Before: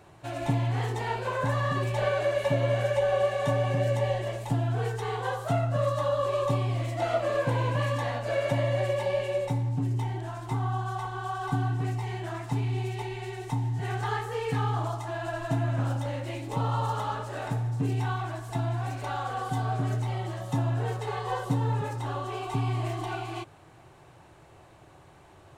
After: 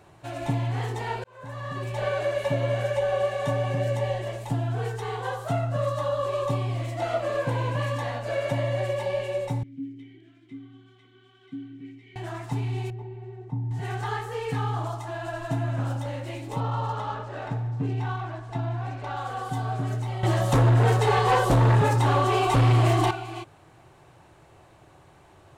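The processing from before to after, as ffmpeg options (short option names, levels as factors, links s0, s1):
-filter_complex "[0:a]asettb=1/sr,asplit=3[s0][s1][s2];[s0]atrim=end=9.634[s3];[s1]atrim=start=9.63:end=12.16,asetpts=PTS-STARTPTS,afade=t=in:d=0.004:c=qsin,afade=t=out:st=2.526:d=0.004:c=qsin,asplit=3[s4][s5][s6];[s4]bandpass=f=270:t=q:w=8,volume=1[s7];[s5]bandpass=f=2290:t=q:w=8,volume=0.501[s8];[s6]bandpass=f=3010:t=q:w=8,volume=0.355[s9];[s7][s8][s9]amix=inputs=3:normalize=0[s10];[s2]atrim=start=12.156[s11];[s3][s10]acrossfade=d=0.004:c1=hsin:c2=qsin[s12];[s12][s11]acrossfade=d=0.004:c1=qsin:c2=hsin,asettb=1/sr,asplit=3[s13][s14][s15];[s13]atrim=end=12.904[s16];[s14]atrim=start=12.9:end=13.71,asetpts=PTS-STARTPTS,afade=t=in:d=0.004:c=qsin,afade=t=out:st=0.806:d=0.004:c=qsin,bandpass=f=160:t=q:w=0.67[s17];[s15]atrim=start=13.706[s18];[s16][s17]acrossfade=d=0.004:c1=hsin:c2=qsin[s19];[s19][s18]acrossfade=d=0.004:c1=qsin:c2=hsin,asettb=1/sr,asplit=3[s20][s21][s22];[s20]atrim=end=16.604[s23];[s21]atrim=start=16.6:end=19.17,asetpts=PTS-STARTPTS,afade=t=in:d=0.004:c=qsin,afade=t=out:st=2.566:d=0.004:c=qsin,adynamicsmooth=sensitivity=6:basefreq=3600[s24];[s22]atrim=start=19.166[s25];[s23][s24]acrossfade=d=0.004:c1=hsin:c2=qsin[s26];[s26][s25]acrossfade=d=0.004:c1=qsin:c2=hsin,asettb=1/sr,asplit=3[s27][s28][s29];[s27]atrim=end=20.234[s30];[s28]atrim=start=20.23:end=23.11,asetpts=PTS-STARTPTS,afade=t=in:d=0.004:c=qsin,afade=t=out:st=2.876:d=0.004:c=qsin,aeval=exprs='0.178*sin(PI/2*2.82*val(0)/0.178)':c=same[s31];[s29]atrim=start=23.106[s32];[s30][s31]acrossfade=d=0.004:c1=hsin:c2=qsin[s33];[s33][s32]acrossfade=d=0.004:c1=qsin:c2=hsin,asplit=2[s34][s35];[s34]atrim=end=1.24,asetpts=PTS-STARTPTS,afade=t=out:st=1.236:d=0.004:c=hsin[s36];[s35]atrim=start=1.24,asetpts=PTS-STARTPTS,afade=t=in:d=0.9[s37];[s36][s37]concat=n=2:v=0:a=1"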